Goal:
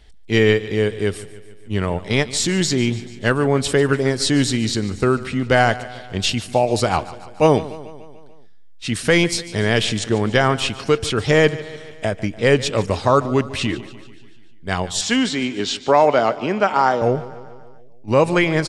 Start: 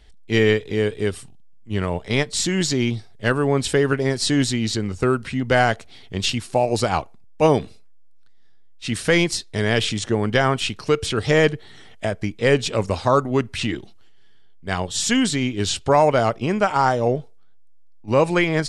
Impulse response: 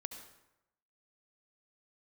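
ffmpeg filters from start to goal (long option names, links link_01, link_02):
-filter_complex "[0:a]asettb=1/sr,asplit=3[link_01][link_02][link_03];[link_01]atrim=end=15.014[link_04];[link_02]atrim=start=15.01:end=17.02,asetpts=PTS-STARTPTS,afade=type=in:duration=0.004:curve=qsin,afade=type=out:start_time=2.006:duration=0.004:curve=qsin,acrossover=split=180 6500:gain=0.1 1 0.1[link_05][link_06][link_07];[link_05][link_06][link_07]amix=inputs=3:normalize=0[link_08];[link_03]atrim=start=17.016[link_09];[link_04][link_08]acrossfade=duration=0.004:curve1=hsin:curve2=qsin[link_10];[link_10][link_09]acrossfade=duration=0.004:curve1=qsin:curve2=hsin,asplit=2[link_11][link_12];[link_12]aecho=0:1:146|292|438|584|730|876:0.141|0.0848|0.0509|0.0305|0.0183|0.011[link_13];[link_11][link_13]amix=inputs=2:normalize=0,volume=2dB"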